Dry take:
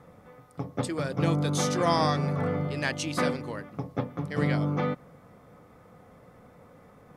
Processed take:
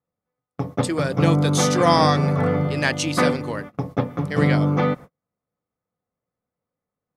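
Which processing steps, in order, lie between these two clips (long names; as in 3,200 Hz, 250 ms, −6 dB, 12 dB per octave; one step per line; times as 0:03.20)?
noise gate −42 dBFS, range −41 dB
level +8 dB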